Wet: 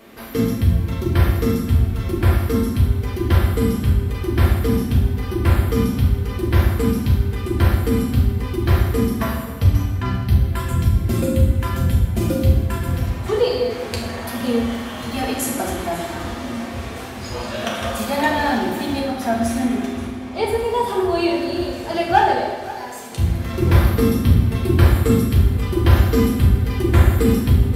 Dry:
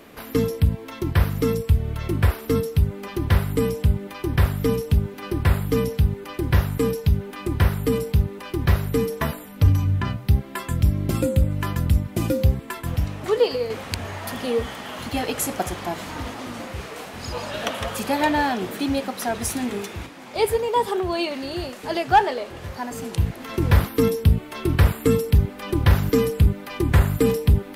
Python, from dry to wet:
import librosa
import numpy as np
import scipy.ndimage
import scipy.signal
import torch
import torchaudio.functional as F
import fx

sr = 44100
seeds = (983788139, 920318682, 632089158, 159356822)

p1 = fx.high_shelf(x, sr, hz=5500.0, db=-9.0, at=(18.99, 20.59))
p2 = fx.highpass(p1, sr, hz=1200.0, slope=6, at=(22.48, 23.12))
p3 = p2 + fx.echo_single(p2, sr, ms=528, db=-17.0, dry=0)
p4 = fx.rev_fdn(p3, sr, rt60_s=1.2, lf_ratio=1.4, hf_ratio=0.8, size_ms=26.0, drr_db=-3.5)
y = p4 * 10.0 ** (-2.5 / 20.0)